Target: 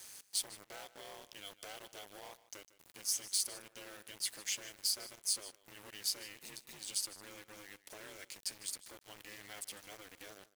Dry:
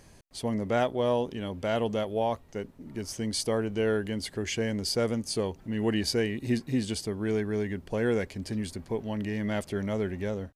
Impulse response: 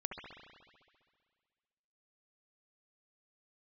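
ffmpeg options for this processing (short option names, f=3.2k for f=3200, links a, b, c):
-af "aeval=exprs='val(0)*sin(2*PI*100*n/s)':c=same,acompressor=threshold=-39dB:ratio=10,aeval=exprs='0.0473*(cos(1*acos(clip(val(0)/0.0473,-1,1)))-cos(1*PI/2))+0.0075*(cos(5*acos(clip(val(0)/0.0473,-1,1)))-cos(5*PI/2))':c=same,aderivative,acrusher=bits=9:mix=0:aa=0.000001,aecho=1:1:153:0.133,volume=8.5dB"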